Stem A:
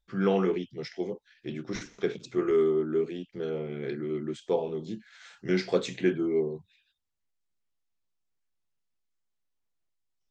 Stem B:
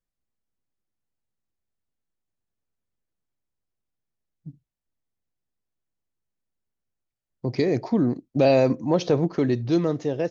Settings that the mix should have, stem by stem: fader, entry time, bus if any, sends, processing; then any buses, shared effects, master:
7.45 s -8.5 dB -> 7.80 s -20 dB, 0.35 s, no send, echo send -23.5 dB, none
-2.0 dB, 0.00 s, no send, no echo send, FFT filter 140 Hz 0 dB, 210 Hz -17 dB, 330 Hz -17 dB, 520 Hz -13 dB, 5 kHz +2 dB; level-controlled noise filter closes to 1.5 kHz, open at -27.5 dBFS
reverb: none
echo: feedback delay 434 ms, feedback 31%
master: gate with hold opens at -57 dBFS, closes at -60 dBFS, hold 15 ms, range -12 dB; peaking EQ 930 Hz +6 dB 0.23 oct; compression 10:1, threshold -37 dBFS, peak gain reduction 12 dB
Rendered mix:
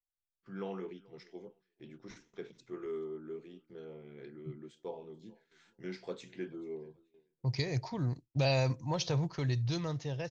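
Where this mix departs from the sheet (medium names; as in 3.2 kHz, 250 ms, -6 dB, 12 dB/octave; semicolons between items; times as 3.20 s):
stem A -8.5 dB -> -15.5 dB; master: missing compression 10:1, threshold -37 dBFS, peak gain reduction 12 dB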